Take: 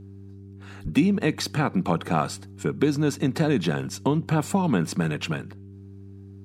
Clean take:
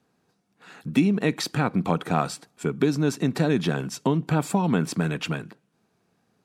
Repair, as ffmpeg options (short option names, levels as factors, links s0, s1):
-filter_complex "[0:a]bandreject=f=98.1:t=h:w=4,bandreject=f=196.2:t=h:w=4,bandreject=f=294.3:t=h:w=4,bandreject=f=392.4:t=h:w=4,asplit=3[s0][s1][s2];[s0]afade=t=out:st=0.83:d=0.02[s3];[s1]highpass=f=140:w=0.5412,highpass=f=140:w=1.3066,afade=t=in:st=0.83:d=0.02,afade=t=out:st=0.95:d=0.02[s4];[s2]afade=t=in:st=0.95:d=0.02[s5];[s3][s4][s5]amix=inputs=3:normalize=0"